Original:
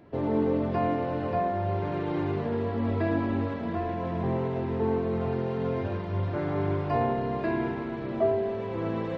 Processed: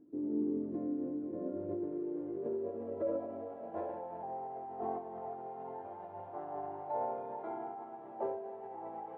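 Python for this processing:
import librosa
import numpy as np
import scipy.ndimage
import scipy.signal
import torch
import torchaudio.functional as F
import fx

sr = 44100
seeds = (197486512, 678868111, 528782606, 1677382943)

y = fx.filter_sweep_bandpass(x, sr, from_hz=350.0, to_hz=900.0, start_s=1.33, end_s=4.18, q=7.4)
y = fx.formant_shift(y, sr, semitones=-3)
y = y * librosa.db_to_amplitude(2.5)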